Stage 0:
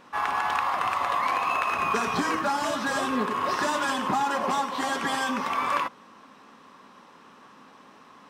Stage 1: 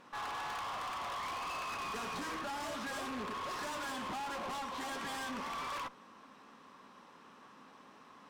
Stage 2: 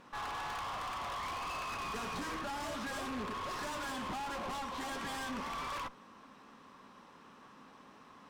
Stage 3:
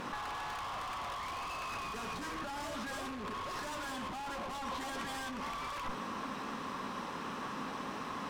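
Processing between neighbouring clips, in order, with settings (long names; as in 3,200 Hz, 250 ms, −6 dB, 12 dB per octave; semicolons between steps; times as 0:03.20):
tube saturation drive 33 dB, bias 0.35; level −5 dB
low-shelf EQ 120 Hz +9.5 dB
compressor whose output falls as the input rises −48 dBFS, ratio −1; level +8.5 dB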